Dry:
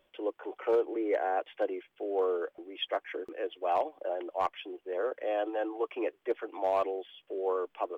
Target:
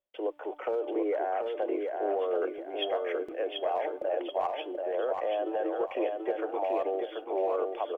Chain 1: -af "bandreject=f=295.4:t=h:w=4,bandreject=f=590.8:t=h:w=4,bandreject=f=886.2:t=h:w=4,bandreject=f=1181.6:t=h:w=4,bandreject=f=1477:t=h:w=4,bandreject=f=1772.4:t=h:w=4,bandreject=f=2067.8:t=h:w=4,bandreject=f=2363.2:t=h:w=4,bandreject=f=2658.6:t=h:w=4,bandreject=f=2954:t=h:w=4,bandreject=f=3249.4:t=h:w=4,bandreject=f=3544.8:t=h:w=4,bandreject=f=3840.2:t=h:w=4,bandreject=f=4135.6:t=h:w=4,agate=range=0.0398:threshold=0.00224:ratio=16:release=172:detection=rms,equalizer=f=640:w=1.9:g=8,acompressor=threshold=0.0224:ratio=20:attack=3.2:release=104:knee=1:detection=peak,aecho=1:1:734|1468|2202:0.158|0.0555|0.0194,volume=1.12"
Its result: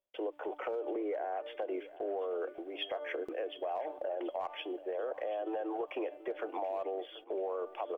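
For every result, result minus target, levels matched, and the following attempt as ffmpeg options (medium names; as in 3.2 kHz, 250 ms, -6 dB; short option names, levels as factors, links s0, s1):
echo-to-direct -12 dB; compression: peak gain reduction +6 dB
-af "bandreject=f=295.4:t=h:w=4,bandreject=f=590.8:t=h:w=4,bandreject=f=886.2:t=h:w=4,bandreject=f=1181.6:t=h:w=4,bandreject=f=1477:t=h:w=4,bandreject=f=1772.4:t=h:w=4,bandreject=f=2067.8:t=h:w=4,bandreject=f=2363.2:t=h:w=4,bandreject=f=2658.6:t=h:w=4,bandreject=f=2954:t=h:w=4,bandreject=f=3249.4:t=h:w=4,bandreject=f=3544.8:t=h:w=4,bandreject=f=3840.2:t=h:w=4,bandreject=f=4135.6:t=h:w=4,agate=range=0.0398:threshold=0.00224:ratio=16:release=172:detection=rms,equalizer=f=640:w=1.9:g=8,acompressor=threshold=0.0224:ratio=20:attack=3.2:release=104:knee=1:detection=peak,aecho=1:1:734|1468|2202|2936:0.631|0.221|0.0773|0.0271,volume=1.12"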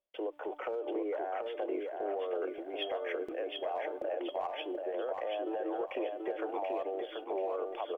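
compression: peak gain reduction +6 dB
-af "bandreject=f=295.4:t=h:w=4,bandreject=f=590.8:t=h:w=4,bandreject=f=886.2:t=h:w=4,bandreject=f=1181.6:t=h:w=4,bandreject=f=1477:t=h:w=4,bandreject=f=1772.4:t=h:w=4,bandreject=f=2067.8:t=h:w=4,bandreject=f=2363.2:t=h:w=4,bandreject=f=2658.6:t=h:w=4,bandreject=f=2954:t=h:w=4,bandreject=f=3249.4:t=h:w=4,bandreject=f=3544.8:t=h:w=4,bandreject=f=3840.2:t=h:w=4,bandreject=f=4135.6:t=h:w=4,agate=range=0.0398:threshold=0.00224:ratio=16:release=172:detection=rms,equalizer=f=640:w=1.9:g=8,acompressor=threshold=0.0473:ratio=20:attack=3.2:release=104:knee=1:detection=peak,aecho=1:1:734|1468|2202|2936:0.631|0.221|0.0773|0.0271,volume=1.12"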